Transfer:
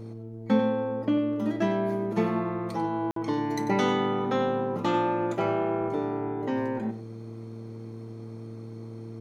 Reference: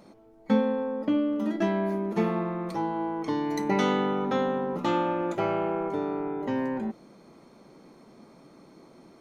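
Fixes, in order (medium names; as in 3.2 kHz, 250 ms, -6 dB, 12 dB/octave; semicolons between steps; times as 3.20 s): de-hum 113.1 Hz, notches 4; interpolate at 3.11 s, 53 ms; inverse comb 94 ms -12 dB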